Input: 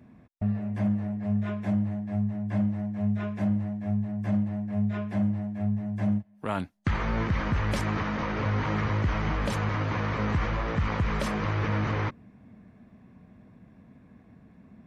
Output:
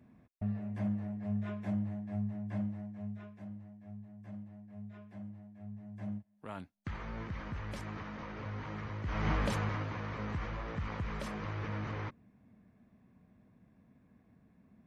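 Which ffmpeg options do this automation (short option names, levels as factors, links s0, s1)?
-af "volume=2.99,afade=t=out:st=2.37:d=0.99:silence=0.251189,afade=t=in:st=5.61:d=0.47:silence=0.501187,afade=t=in:st=9.03:d=0.28:silence=0.266073,afade=t=out:st=9.31:d=0.62:silence=0.375837"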